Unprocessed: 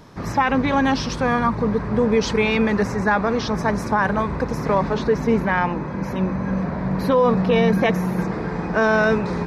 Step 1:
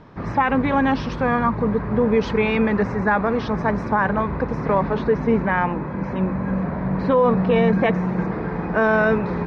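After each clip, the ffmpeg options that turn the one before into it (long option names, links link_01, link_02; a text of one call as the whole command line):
ffmpeg -i in.wav -af "lowpass=2600" out.wav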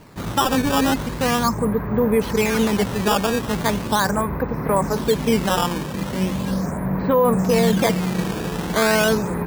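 ffmpeg -i in.wav -af "acrusher=samples=12:mix=1:aa=0.000001:lfo=1:lforange=19.2:lforate=0.39" out.wav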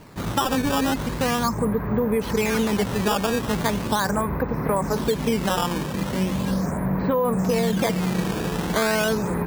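ffmpeg -i in.wav -af "acompressor=threshold=-18dB:ratio=6" out.wav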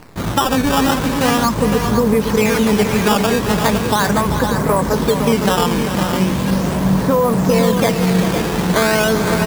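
ffmpeg -i in.wav -af "aecho=1:1:392|511:0.335|0.447,acrusher=bits=7:dc=4:mix=0:aa=0.000001,volume=6.5dB" out.wav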